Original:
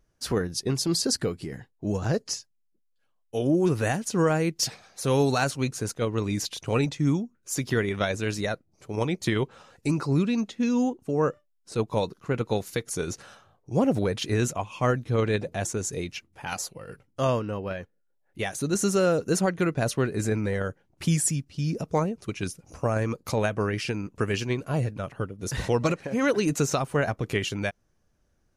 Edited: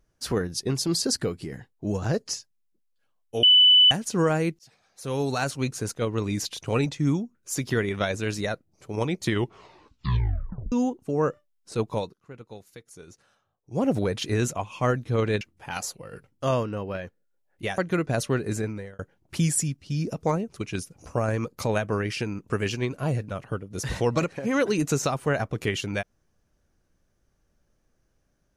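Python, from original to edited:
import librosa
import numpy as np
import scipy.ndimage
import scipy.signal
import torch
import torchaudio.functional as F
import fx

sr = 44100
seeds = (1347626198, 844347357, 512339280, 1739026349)

y = fx.edit(x, sr, fx.bleep(start_s=3.43, length_s=0.48, hz=2990.0, db=-12.0),
    fx.fade_in_span(start_s=4.59, length_s=1.07),
    fx.tape_stop(start_s=9.31, length_s=1.41),
    fx.fade_down_up(start_s=11.9, length_s=1.99, db=-16.5, fade_s=0.27),
    fx.cut(start_s=15.41, length_s=0.76),
    fx.cut(start_s=18.54, length_s=0.92),
    fx.fade_out_span(start_s=20.16, length_s=0.51), tone=tone)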